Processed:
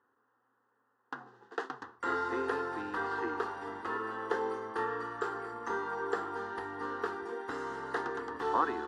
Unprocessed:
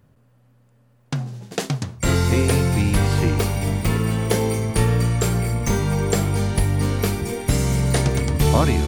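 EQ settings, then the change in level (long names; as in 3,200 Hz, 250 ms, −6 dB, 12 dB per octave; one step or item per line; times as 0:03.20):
high-pass filter 480 Hz 12 dB per octave
low-pass with resonance 1,800 Hz, resonance Q 2.4
phaser with its sweep stopped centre 610 Hz, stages 6
−5.5 dB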